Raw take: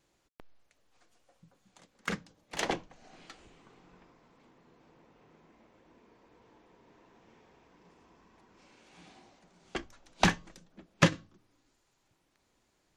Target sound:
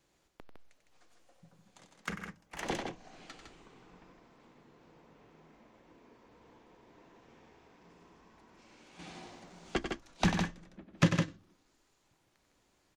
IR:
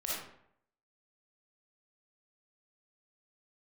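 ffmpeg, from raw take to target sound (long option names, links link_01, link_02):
-filter_complex "[0:a]asettb=1/sr,asplit=3[link_01][link_02][link_03];[link_01]atrim=end=8.994[link_04];[link_02]atrim=start=8.99:end=9.79,asetpts=PTS-STARTPTS,afade=type=in:duration=0.004:curve=qsin,afade=type=out:start_time=0.796:duration=0.004:curve=qsin,acontrast=80[link_05];[link_03]atrim=start=9.786[link_06];[link_04][link_05]acrossfade=duration=0.004:curve1=hsin:curve2=qsin[link_07];[link_07][link_06]acrossfade=duration=0.004:curve1=qsin:curve2=hsin,asettb=1/sr,asplit=3[link_08][link_09][link_10];[link_08]atrim=end=10.504[link_11];[link_09]atrim=start=10.5:end=10.94,asetpts=PTS-STARTPTS,afade=type=in:duration=0.004:curve=qsin,afade=type=out:start_time=0.436:duration=0.004:curve=qsin,bass=frequency=250:gain=3,treble=frequency=4000:gain=-13[link_12];[link_10]atrim=start=10.936[link_13];[link_11][link_12]acrossfade=duration=0.004:curve1=hsin:curve2=qsin[link_14];[link_14][link_13]acrossfade=duration=0.004:curve1=qsin:curve2=hsin,asplit=2[link_15][link_16];[link_16]aecho=0:1:93.29|157.4:0.398|0.501[link_17];[link_15][link_17]amix=inputs=2:normalize=0,acrossover=split=330[link_18][link_19];[link_19]acompressor=threshold=-41dB:ratio=1.5[link_20];[link_18][link_20]amix=inputs=2:normalize=0,asplit=3[link_21][link_22][link_23];[link_21]afade=type=out:start_time=2.09:duration=0.02[link_24];[link_22]equalizer=frequency=125:width_type=o:width=1:gain=-4,equalizer=frequency=250:width_type=o:width=1:gain=-5,equalizer=frequency=500:width_type=o:width=1:gain=-7,equalizer=frequency=4000:width_type=o:width=1:gain=-10,equalizer=frequency=8000:width_type=o:width=1:gain=-4,afade=type=in:start_time=2.09:duration=0.02,afade=type=out:start_time=2.64:duration=0.02[link_25];[link_23]afade=type=in:start_time=2.64:duration=0.02[link_26];[link_24][link_25][link_26]amix=inputs=3:normalize=0"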